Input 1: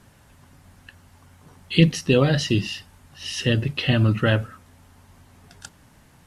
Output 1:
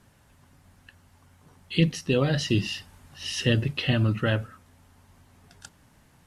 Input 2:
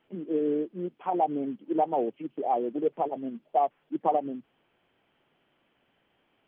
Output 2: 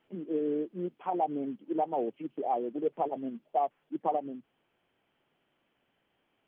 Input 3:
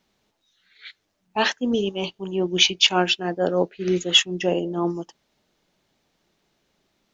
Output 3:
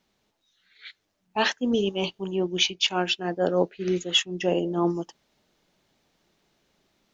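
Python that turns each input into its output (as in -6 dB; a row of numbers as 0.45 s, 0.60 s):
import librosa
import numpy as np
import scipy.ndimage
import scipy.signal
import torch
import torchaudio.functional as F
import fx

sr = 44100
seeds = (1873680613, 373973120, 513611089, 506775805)

y = fx.rider(x, sr, range_db=4, speed_s=0.5)
y = F.gain(torch.from_numpy(y), -3.5).numpy()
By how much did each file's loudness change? -4.5 LU, -3.5 LU, -4.0 LU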